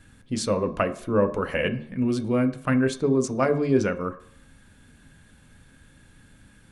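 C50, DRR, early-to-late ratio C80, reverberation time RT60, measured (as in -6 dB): 14.0 dB, 5.5 dB, 17.5 dB, 0.60 s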